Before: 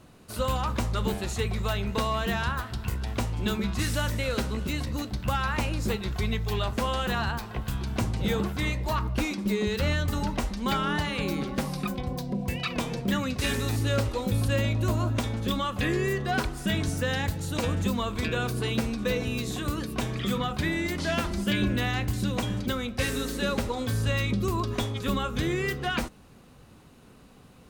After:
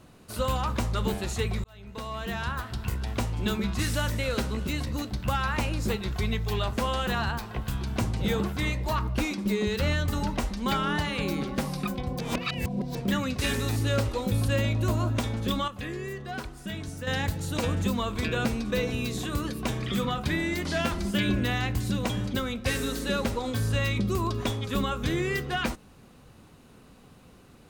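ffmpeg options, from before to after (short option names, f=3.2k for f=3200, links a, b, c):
-filter_complex "[0:a]asplit=7[a][b][c][d][e][f][g];[a]atrim=end=1.64,asetpts=PTS-STARTPTS,afade=t=out:st=1.636:d=0.004:c=hsin[h];[b]atrim=start=1.64:end=12.192,asetpts=PTS-STARTPTS,afade=t=in:d=1.14[i];[c]atrim=start=12.188:end=12.952,asetpts=PTS-STARTPTS,areverse[j];[d]atrim=start=12.948:end=15.682[k];[e]atrim=start=15.678:end=17.072,asetpts=PTS-STARTPTS,volume=-8.5dB[l];[f]atrim=start=17.068:end=18.452[m];[g]atrim=start=18.778[n];[h][i]concat=n=2:v=0:a=1[o];[o][j]acrossfade=d=0.004:c1=hsin:c2=hsin[p];[p][k]acrossfade=d=0.004:c1=hsin:c2=hsin[q];[q][l]acrossfade=d=0.004:c1=hsin:c2=hsin[r];[r][m]acrossfade=d=0.004:c1=hsin:c2=hsin[s];[s][n]acrossfade=d=0.004:c1=hsin:c2=hsin"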